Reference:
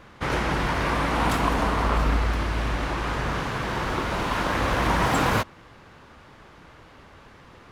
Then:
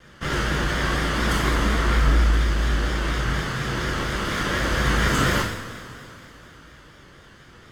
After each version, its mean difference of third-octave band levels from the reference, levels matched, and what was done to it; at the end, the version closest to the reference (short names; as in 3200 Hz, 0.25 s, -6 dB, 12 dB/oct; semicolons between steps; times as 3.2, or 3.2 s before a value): 4.5 dB: minimum comb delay 0.61 ms; two-slope reverb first 0.67 s, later 3.4 s, from -15 dB, DRR -2.5 dB; vibrato 4.2 Hz 66 cents; bell 6600 Hz +3 dB 0.77 oct; gain -2 dB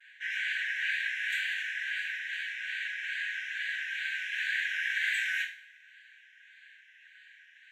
23.0 dB: running mean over 9 samples; wow and flutter 150 cents; brick-wall FIR high-pass 1500 Hz; two-slope reverb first 0.42 s, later 1.8 s, from -25 dB, DRR -1 dB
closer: first